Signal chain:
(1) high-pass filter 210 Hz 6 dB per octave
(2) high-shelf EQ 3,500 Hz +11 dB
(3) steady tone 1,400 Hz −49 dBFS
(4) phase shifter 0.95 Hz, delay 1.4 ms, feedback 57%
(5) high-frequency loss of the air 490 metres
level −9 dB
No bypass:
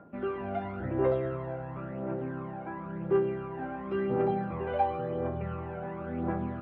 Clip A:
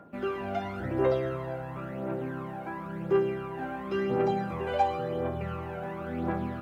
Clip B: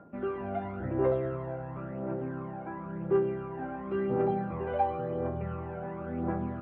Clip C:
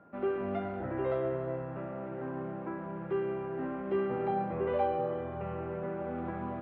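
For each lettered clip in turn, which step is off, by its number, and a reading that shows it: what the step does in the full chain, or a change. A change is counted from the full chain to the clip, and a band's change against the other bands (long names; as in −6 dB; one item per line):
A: 5, 2 kHz band +3.0 dB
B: 2, 2 kHz band −2.0 dB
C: 4, 125 Hz band −2.5 dB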